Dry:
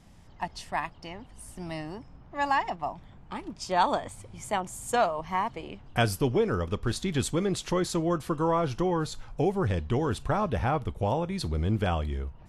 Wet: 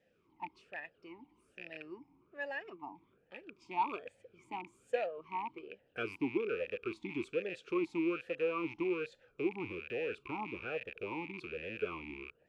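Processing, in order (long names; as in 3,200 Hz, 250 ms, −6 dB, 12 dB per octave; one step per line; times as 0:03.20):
loose part that buzzes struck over −37 dBFS, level −21 dBFS
formant filter swept between two vowels e-u 1.2 Hz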